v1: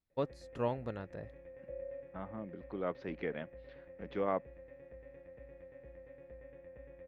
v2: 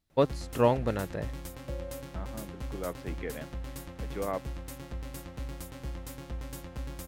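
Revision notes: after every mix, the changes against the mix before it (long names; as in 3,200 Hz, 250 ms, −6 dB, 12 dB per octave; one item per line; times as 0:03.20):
first voice +10.5 dB
background: remove formant resonators in series e
master: add high-shelf EQ 6,300 Hz +9.5 dB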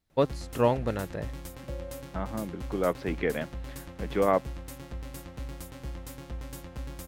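second voice +9.5 dB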